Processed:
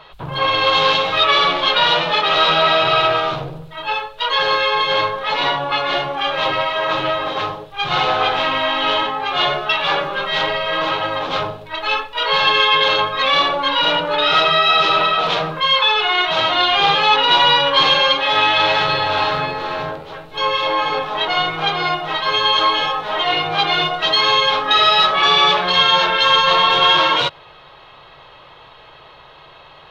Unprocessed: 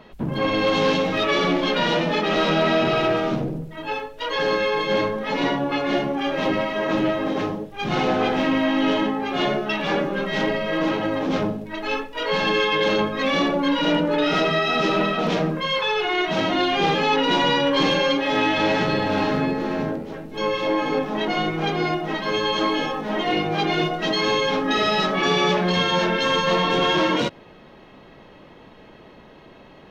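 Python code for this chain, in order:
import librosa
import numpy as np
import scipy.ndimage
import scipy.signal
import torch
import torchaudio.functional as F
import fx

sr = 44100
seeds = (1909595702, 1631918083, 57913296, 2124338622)

y = fx.curve_eq(x, sr, hz=(150.0, 210.0, 430.0, 1200.0, 1900.0, 3800.0, 5700.0), db=(0, -18, -2, 11, 4, 13, 1))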